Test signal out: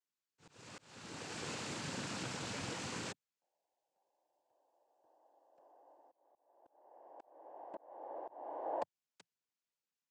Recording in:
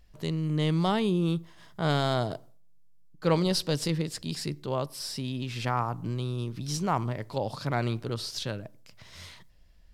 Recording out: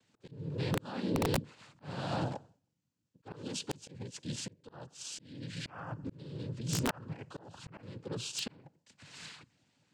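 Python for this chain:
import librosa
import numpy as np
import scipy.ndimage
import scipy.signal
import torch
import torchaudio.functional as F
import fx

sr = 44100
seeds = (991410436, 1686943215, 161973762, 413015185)

y = fx.notch_comb(x, sr, f0_hz=580.0)
y = fx.noise_vocoder(y, sr, seeds[0], bands=8)
y = fx.auto_swell(y, sr, attack_ms=701.0)
y = (np.mod(10.0 ** (22.5 / 20.0) * y + 1.0, 2.0) - 1.0) / 10.0 ** (22.5 / 20.0)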